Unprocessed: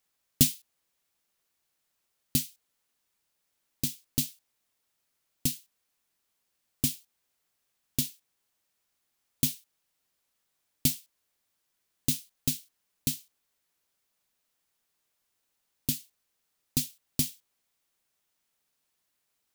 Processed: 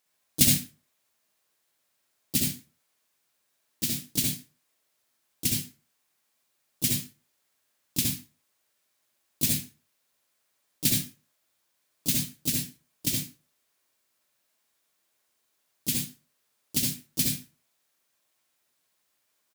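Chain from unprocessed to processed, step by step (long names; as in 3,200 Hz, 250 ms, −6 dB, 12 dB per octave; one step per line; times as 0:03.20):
high-pass filter 200 Hz 6 dB per octave
pitch-shifted copies added −5 semitones −4 dB, +3 semitones −9 dB
convolution reverb RT60 0.35 s, pre-delay 58 ms, DRR −0.5 dB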